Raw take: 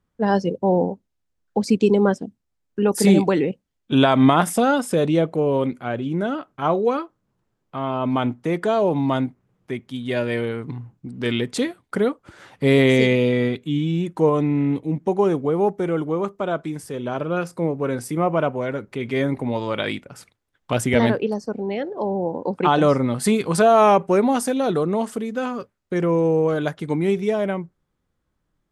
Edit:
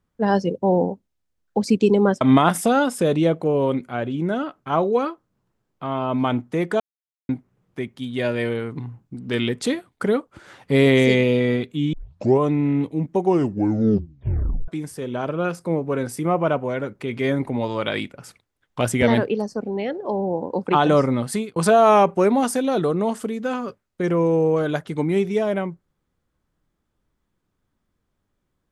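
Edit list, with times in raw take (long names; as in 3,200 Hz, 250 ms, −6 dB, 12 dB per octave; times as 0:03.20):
0:02.21–0:04.13: remove
0:08.72–0:09.21: silence
0:13.85: tape start 0.47 s
0:15.11: tape stop 1.49 s
0:23.11–0:23.48: fade out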